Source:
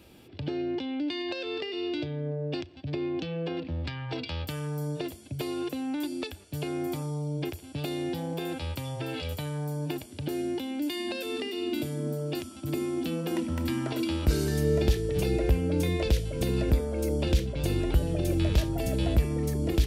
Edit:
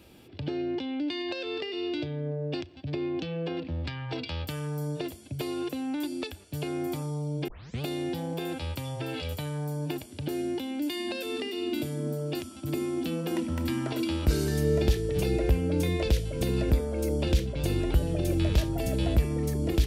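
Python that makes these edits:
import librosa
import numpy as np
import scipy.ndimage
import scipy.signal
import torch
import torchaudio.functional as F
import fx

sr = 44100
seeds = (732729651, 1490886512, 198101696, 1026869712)

y = fx.edit(x, sr, fx.tape_start(start_s=7.48, length_s=0.34), tone=tone)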